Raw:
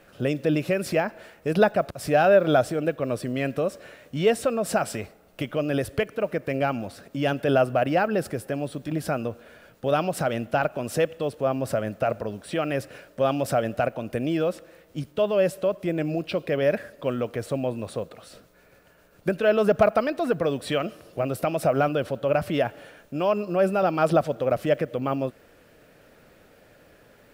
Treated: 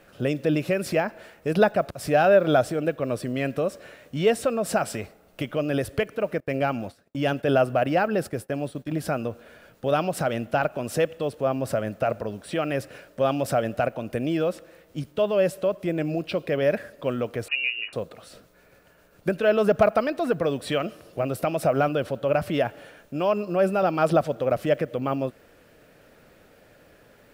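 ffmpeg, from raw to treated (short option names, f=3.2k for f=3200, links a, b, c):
-filter_complex "[0:a]asettb=1/sr,asplit=3[a][b][c];[a]atrim=end=6.404[d];[b]atrim=start=6.4:end=9,asetpts=PTS-STARTPTS,afade=t=in:d=0.004:c=qsin,afade=t=out:st=2.596:d=0.004:c=qsin,agate=range=-33dB:threshold=-36dB:ratio=3:release=100:detection=peak[e];[c]atrim=start=8.996[f];[d][e]acrossfade=d=0.004:c1=hsin:c2=qsin[g];[g][f]acrossfade=d=0.004:c1=qsin:c2=hsin,asettb=1/sr,asplit=3[h][i][j];[h]atrim=end=17.484[k];[i]atrim=start=17.48:end=17.93,asetpts=PTS-STARTPTS,afade=t=in:d=0.004:c=qsin,afade=t=out:st=0.446:d=0.004:c=qsin,lowpass=f=2.6k:t=q:w=0.5098,lowpass=f=2.6k:t=q:w=0.6013,lowpass=f=2.6k:t=q:w=0.9,lowpass=f=2.6k:t=q:w=2.563,afreqshift=-3000[l];[j]atrim=start=17.926[m];[k][l]acrossfade=d=0.004:c1=hsin:c2=qsin[n];[n][m]acrossfade=d=0.004:c1=qsin:c2=hsin"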